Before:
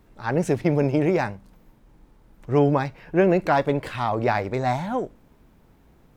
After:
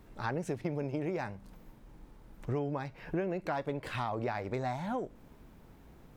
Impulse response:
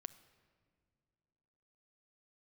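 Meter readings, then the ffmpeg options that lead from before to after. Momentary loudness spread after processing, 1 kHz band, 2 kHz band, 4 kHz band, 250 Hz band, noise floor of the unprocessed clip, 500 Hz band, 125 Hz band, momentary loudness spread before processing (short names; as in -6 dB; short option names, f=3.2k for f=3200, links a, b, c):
5 LU, -12.5 dB, -12.0 dB, -10.0 dB, -13.0 dB, -57 dBFS, -14.0 dB, -12.5 dB, 7 LU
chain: -af "acompressor=threshold=-32dB:ratio=6"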